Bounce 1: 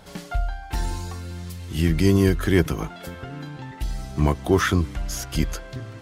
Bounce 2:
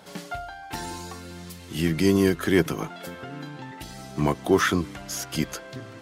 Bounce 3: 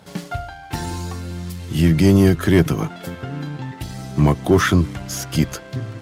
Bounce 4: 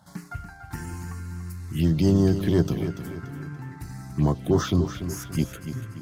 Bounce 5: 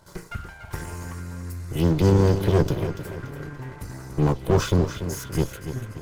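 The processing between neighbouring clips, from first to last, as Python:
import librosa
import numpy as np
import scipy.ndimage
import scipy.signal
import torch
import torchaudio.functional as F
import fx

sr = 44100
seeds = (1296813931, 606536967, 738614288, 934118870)

y1 = scipy.signal.sosfilt(scipy.signal.butter(2, 170.0, 'highpass', fs=sr, output='sos'), x)
y2 = fx.peak_eq(y1, sr, hz=97.0, db=12.5, octaves=1.9)
y2 = fx.leveller(y2, sr, passes=1)
y3 = fx.env_phaser(y2, sr, low_hz=420.0, high_hz=2400.0, full_db=-10.5)
y3 = fx.echo_feedback(y3, sr, ms=288, feedback_pct=42, wet_db=-10)
y3 = F.gain(torch.from_numpy(y3), -6.5).numpy()
y4 = fx.lower_of_two(y3, sr, delay_ms=2.0)
y4 = F.gain(torch.from_numpy(y4), 3.0).numpy()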